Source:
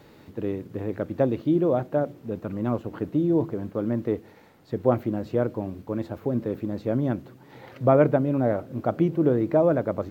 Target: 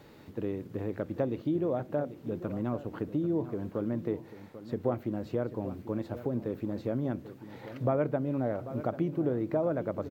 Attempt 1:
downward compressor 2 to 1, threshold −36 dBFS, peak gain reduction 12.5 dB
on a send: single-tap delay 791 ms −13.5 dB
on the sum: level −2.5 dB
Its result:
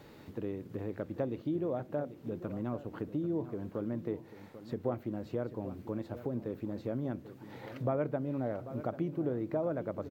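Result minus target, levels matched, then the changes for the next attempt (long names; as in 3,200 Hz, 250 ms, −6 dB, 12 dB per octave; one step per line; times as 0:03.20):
downward compressor: peak gain reduction +4 dB
change: downward compressor 2 to 1, threshold −28 dBFS, peak gain reduction 8.5 dB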